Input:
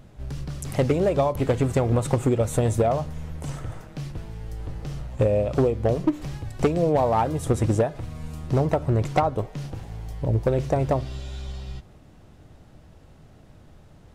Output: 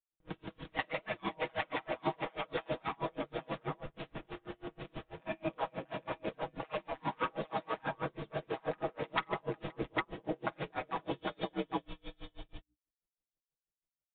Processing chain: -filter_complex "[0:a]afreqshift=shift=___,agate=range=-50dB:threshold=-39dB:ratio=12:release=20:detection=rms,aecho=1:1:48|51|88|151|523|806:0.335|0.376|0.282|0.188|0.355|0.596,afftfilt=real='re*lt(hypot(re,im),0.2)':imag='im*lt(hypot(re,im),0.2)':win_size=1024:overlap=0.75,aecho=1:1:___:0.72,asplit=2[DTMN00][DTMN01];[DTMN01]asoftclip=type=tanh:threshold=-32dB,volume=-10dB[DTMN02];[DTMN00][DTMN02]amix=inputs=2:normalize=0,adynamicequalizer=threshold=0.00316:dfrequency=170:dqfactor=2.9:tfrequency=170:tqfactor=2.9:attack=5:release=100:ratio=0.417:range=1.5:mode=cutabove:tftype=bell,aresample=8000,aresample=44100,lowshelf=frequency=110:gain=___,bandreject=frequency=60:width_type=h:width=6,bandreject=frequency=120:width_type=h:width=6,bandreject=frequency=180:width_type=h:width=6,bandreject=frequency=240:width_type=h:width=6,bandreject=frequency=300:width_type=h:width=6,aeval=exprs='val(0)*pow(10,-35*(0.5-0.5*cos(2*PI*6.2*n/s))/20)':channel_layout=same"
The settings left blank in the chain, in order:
-87, 6.3, -5.5